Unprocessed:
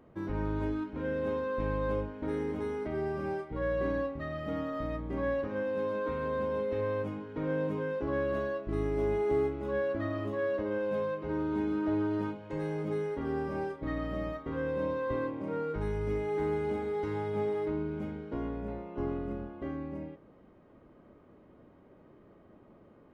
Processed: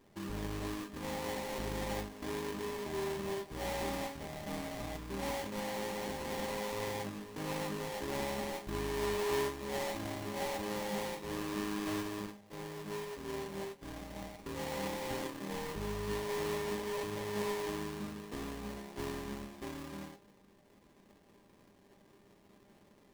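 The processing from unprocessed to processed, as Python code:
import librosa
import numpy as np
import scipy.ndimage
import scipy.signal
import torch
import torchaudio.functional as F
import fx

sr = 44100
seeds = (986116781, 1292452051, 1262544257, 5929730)

y = fx.sample_hold(x, sr, seeds[0], rate_hz=1400.0, jitter_pct=20)
y = fx.comb_fb(y, sr, f0_hz=200.0, decay_s=0.16, harmonics='all', damping=0.0, mix_pct=70)
y = fx.upward_expand(y, sr, threshold_db=-48.0, expansion=1.5, at=(12.0, 14.38), fade=0.02)
y = y * librosa.db_to_amplitude(1.0)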